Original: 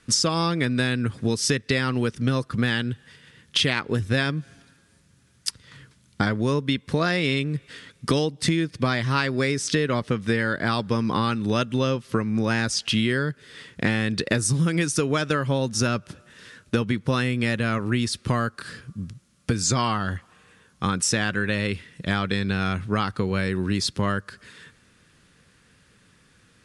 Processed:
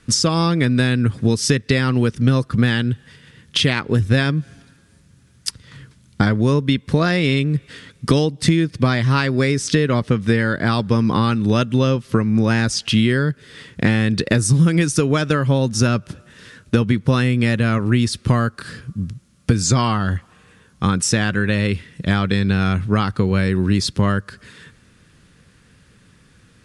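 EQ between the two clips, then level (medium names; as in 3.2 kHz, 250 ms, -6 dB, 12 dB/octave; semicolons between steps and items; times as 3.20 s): bass shelf 270 Hz +7 dB; +3.0 dB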